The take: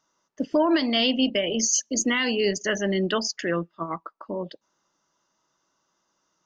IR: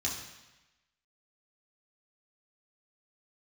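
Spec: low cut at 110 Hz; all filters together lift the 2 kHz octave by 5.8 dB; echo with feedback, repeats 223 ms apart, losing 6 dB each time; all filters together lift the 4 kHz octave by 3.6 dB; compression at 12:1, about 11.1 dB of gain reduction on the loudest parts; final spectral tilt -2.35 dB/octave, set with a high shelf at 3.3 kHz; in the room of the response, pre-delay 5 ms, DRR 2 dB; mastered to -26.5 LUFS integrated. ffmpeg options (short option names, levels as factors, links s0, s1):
-filter_complex "[0:a]highpass=110,equalizer=f=2000:t=o:g=7,highshelf=f=3300:g=-4.5,equalizer=f=4000:t=o:g=5,acompressor=threshold=0.0447:ratio=12,aecho=1:1:223|446|669|892|1115|1338:0.501|0.251|0.125|0.0626|0.0313|0.0157,asplit=2[s0][s1];[1:a]atrim=start_sample=2205,adelay=5[s2];[s1][s2]afir=irnorm=-1:irlink=0,volume=0.473[s3];[s0][s3]amix=inputs=2:normalize=0,volume=1.12"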